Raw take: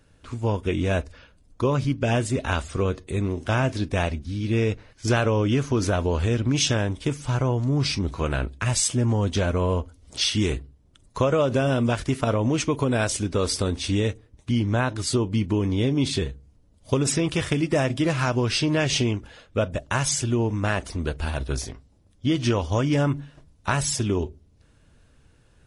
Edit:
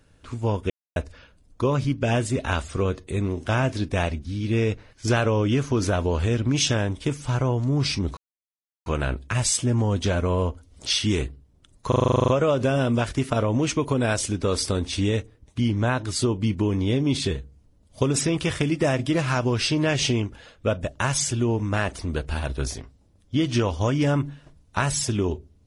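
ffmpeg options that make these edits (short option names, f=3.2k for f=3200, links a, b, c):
-filter_complex "[0:a]asplit=14[a][b][c][d][e][f][g][h][i][j][k][l][m][n];[a]atrim=end=0.7,asetpts=PTS-STARTPTS,afade=t=out:st=0.696:d=0.004:c=hsin[o];[b]atrim=start=0.7:end=0.96,asetpts=PTS-STARTPTS,volume=0[p];[c]atrim=start=0.96:end=8.17,asetpts=PTS-STARTPTS,afade=t=in:d=0.004:c=hsin,afade=t=out:st=7.206:d=0.004:c=hsin,apad=pad_dur=0.69[q];[d]atrim=start=8.17:end=11.232,asetpts=PTS-STARTPTS,afade=t=in:d=0.004:c=hsin[r];[e]atrim=start=11.188:end=11.232[s];[f]atrim=start=11.188:end=11.232[t];[g]atrim=start=11.188:end=11.232[u];[h]atrim=start=11.188:end=11.232[v];[i]atrim=start=11.188:end=11.232[w];[j]atrim=start=11.188:end=11.232[x];[k]atrim=start=11.188:end=11.232[y];[l]atrim=start=11.188:end=11.232[z];[m]atrim=start=11.188:end=11.232[aa];[n]atrim=start=11.188[ab];[o][p][q][r]concat=n=4:v=0:a=1[ac];[ac][s]acrossfade=d=0.004:c1=hsin:c2=hsin[ad];[ad][t]acrossfade=d=0.004:c1=hsin:c2=hsin[ae];[ae][u]acrossfade=d=0.004:c1=hsin:c2=hsin[af];[af][v]acrossfade=d=0.004:c1=hsin:c2=hsin[ag];[ag][w]acrossfade=d=0.004:c1=hsin:c2=hsin[ah];[ah][x]acrossfade=d=0.004:c1=hsin:c2=hsin[ai];[ai][y]acrossfade=d=0.004:c1=hsin:c2=hsin[aj];[aj][z]acrossfade=d=0.004:c1=hsin:c2=hsin[ak];[ak][aa]acrossfade=d=0.004:c1=hsin:c2=hsin[al];[al][ab]acrossfade=d=0.004:c1=hsin:c2=hsin"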